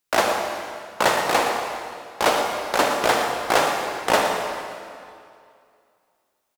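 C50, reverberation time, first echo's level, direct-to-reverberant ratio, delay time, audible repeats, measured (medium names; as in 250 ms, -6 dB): 2.0 dB, 2.4 s, -9.5 dB, 1.5 dB, 116 ms, 1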